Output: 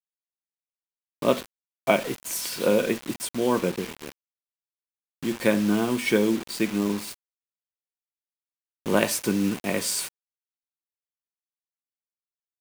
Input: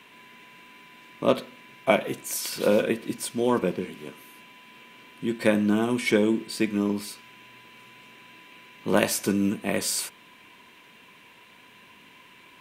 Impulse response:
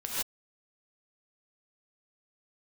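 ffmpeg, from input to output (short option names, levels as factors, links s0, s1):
-af "acrusher=bits=5:mix=0:aa=0.000001"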